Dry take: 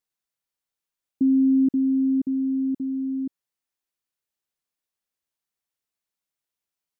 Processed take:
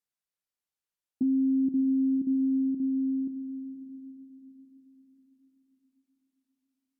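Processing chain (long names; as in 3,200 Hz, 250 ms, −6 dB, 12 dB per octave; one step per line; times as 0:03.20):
treble cut that deepens with the level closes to 360 Hz, closed at −20 dBFS
feedback delay with all-pass diffusion 549 ms, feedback 45%, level −10.5 dB
level −5.5 dB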